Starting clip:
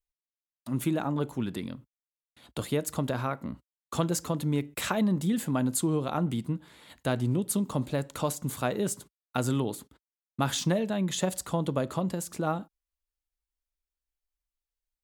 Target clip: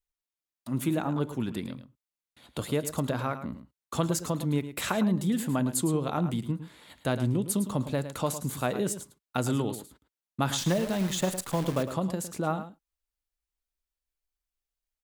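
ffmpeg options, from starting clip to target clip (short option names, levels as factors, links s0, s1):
-filter_complex "[0:a]asettb=1/sr,asplit=3[s0][s1][s2];[s0]atrim=end=10.584[s3];[s1]atrim=start=10.58:end=11.83,asetpts=PTS-STARTPTS,afade=t=in:d=0.004:c=qsin,afade=t=out:st=1.246:d=0.004:c=qsin,acrusher=bits=7:dc=4:mix=0:aa=0.000001[s4];[s2]atrim=start=11.826[s5];[s3][s4]acrossfade=d=0.004:c1=hsin:c2=qsin[s6];[s6][s5]acrossfade=d=0.004:c1=qsin:c2=hsin,asplit=2[s7][s8];[s8]aecho=0:1:108:0.266[s9];[s7][s9]amix=inputs=2:normalize=0"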